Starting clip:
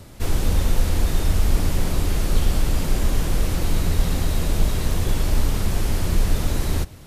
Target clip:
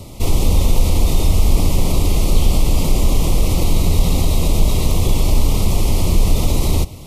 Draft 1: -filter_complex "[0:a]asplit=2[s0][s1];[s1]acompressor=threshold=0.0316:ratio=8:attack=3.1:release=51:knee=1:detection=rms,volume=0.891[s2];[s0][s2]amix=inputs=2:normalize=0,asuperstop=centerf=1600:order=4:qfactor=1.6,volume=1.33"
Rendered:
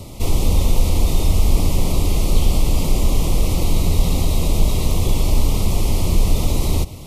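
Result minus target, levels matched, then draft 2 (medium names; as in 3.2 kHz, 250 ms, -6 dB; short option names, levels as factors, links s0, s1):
compression: peak gain reduction +9 dB
-filter_complex "[0:a]asplit=2[s0][s1];[s1]acompressor=threshold=0.1:ratio=8:attack=3.1:release=51:knee=1:detection=rms,volume=0.891[s2];[s0][s2]amix=inputs=2:normalize=0,asuperstop=centerf=1600:order=4:qfactor=1.6,volume=1.33"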